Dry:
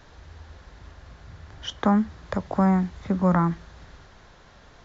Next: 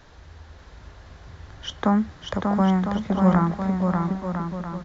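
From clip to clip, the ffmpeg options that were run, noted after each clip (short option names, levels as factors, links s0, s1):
-af "aecho=1:1:590|1003|1292|1494|1636:0.631|0.398|0.251|0.158|0.1"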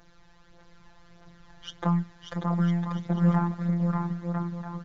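-af "aeval=exprs='0.447*(cos(1*acos(clip(val(0)/0.447,-1,1)))-cos(1*PI/2))+0.00794*(cos(8*acos(clip(val(0)/0.447,-1,1)))-cos(8*PI/2))':c=same,afftfilt=real='hypot(re,im)*cos(PI*b)':imag='0':win_size=1024:overlap=0.75,aphaser=in_gain=1:out_gain=1:delay=1.3:decay=0.4:speed=1.6:type=triangular,volume=0.562"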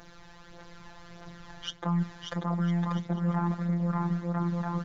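-af "lowshelf=f=110:g=-5.5,areverse,acompressor=threshold=0.02:ratio=5,areverse,volume=2.51"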